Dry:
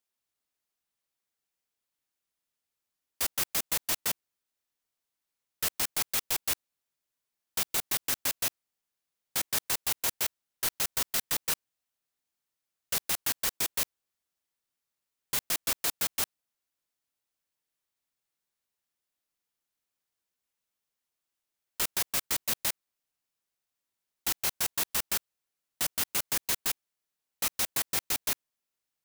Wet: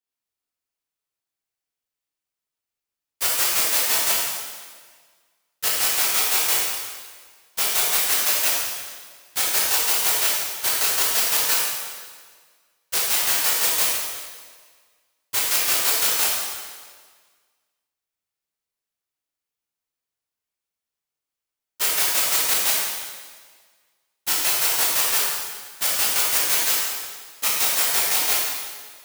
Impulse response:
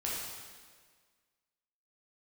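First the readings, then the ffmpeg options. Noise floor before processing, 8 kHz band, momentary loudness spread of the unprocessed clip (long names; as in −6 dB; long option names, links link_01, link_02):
below −85 dBFS, +11.0 dB, 5 LU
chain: -filter_complex "[0:a]agate=range=-13dB:threshold=-31dB:ratio=16:detection=peak,acrossover=split=380|1200|2300[link_01][link_02][link_03][link_04];[link_01]acompressor=threshold=-59dB:ratio=6[link_05];[link_05][link_02][link_03][link_04]amix=inputs=4:normalize=0[link_06];[1:a]atrim=start_sample=2205[link_07];[link_06][link_07]afir=irnorm=-1:irlink=0,volume=8dB"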